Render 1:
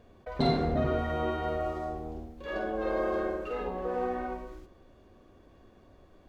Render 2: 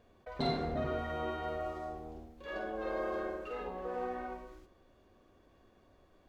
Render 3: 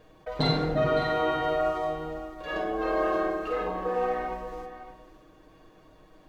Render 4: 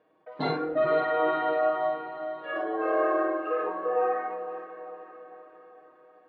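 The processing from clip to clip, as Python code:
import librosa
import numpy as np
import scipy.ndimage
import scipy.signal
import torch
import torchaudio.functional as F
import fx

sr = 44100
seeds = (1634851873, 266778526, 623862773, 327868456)

y1 = fx.low_shelf(x, sr, hz=500.0, db=-5.0)
y1 = F.gain(torch.from_numpy(y1), -4.0).numpy()
y2 = y1 + 0.78 * np.pad(y1, (int(6.4 * sr / 1000.0), 0))[:len(y1)]
y2 = y2 + 10.0 ** (-12.5 / 20.0) * np.pad(y2, (int(561 * sr / 1000.0), 0))[:len(y2)]
y2 = F.gain(torch.from_numpy(y2), 7.5).numpy()
y3 = fx.bandpass_edges(y2, sr, low_hz=290.0, high_hz=2100.0)
y3 = fx.noise_reduce_blind(y3, sr, reduce_db=10)
y3 = fx.echo_diffused(y3, sr, ms=497, feedback_pct=53, wet_db=-12)
y3 = F.gain(torch.from_numpy(y3), 2.0).numpy()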